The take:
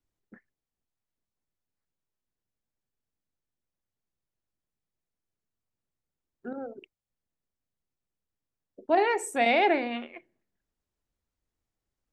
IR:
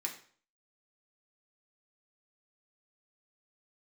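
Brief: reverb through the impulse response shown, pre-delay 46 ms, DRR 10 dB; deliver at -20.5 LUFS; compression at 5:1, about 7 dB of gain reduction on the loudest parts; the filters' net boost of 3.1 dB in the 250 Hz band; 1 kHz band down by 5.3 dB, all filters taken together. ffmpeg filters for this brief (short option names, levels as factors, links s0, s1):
-filter_complex "[0:a]equalizer=f=250:t=o:g=4.5,equalizer=f=1000:t=o:g=-9,acompressor=threshold=0.0398:ratio=5,asplit=2[s0][s1];[1:a]atrim=start_sample=2205,adelay=46[s2];[s1][s2]afir=irnorm=-1:irlink=0,volume=0.282[s3];[s0][s3]amix=inputs=2:normalize=0,volume=4.47"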